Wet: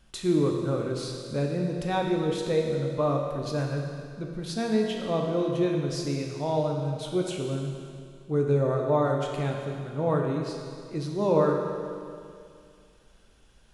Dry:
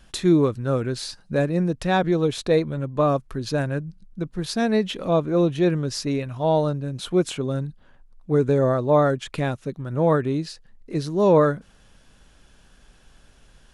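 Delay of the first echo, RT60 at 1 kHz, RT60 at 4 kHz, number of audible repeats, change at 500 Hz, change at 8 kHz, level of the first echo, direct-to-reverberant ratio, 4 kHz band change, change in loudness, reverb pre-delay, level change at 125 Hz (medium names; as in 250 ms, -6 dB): no echo, 2.3 s, 2.3 s, no echo, -5.0 dB, -5.5 dB, no echo, 0.5 dB, -5.0 dB, -5.5 dB, 12 ms, -4.5 dB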